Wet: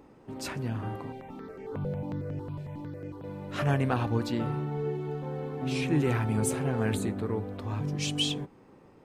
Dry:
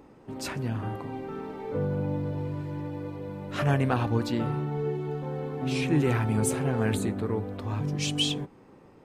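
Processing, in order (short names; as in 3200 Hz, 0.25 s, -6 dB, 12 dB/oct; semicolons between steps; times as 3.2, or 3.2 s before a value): 1.12–3.24 step phaser 11 Hz 300–3800 Hz; gain -2 dB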